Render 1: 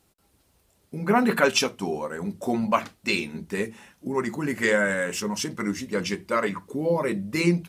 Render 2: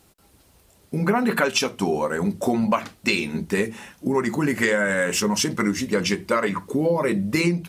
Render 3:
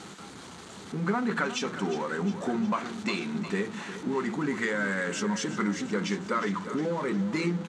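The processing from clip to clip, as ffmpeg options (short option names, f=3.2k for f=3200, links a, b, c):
-af "acompressor=threshold=-26dB:ratio=6,volume=8.5dB"
-af "aeval=exprs='val(0)+0.5*0.0501*sgn(val(0))':c=same,highpass=170,equalizer=f=190:t=q:w=4:g=5,equalizer=f=590:t=q:w=4:g=-7,equalizer=f=1.3k:t=q:w=4:g=4,equalizer=f=2.6k:t=q:w=4:g=-5,equalizer=f=5.2k:t=q:w=4:g=-8,lowpass=f=7k:w=0.5412,lowpass=f=7k:w=1.3066,aecho=1:1:358|716|1074|1432|1790|2148:0.251|0.143|0.0816|0.0465|0.0265|0.0151,volume=-9dB"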